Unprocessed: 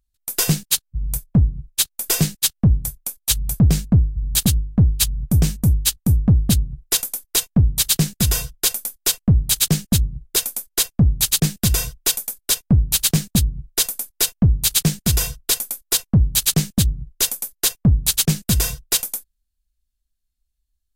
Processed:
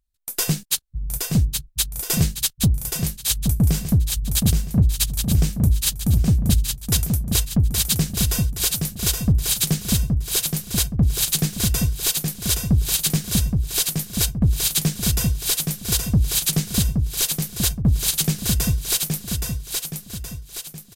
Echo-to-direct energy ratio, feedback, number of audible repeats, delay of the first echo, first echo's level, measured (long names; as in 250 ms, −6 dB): −3.5 dB, 46%, 5, 821 ms, −4.5 dB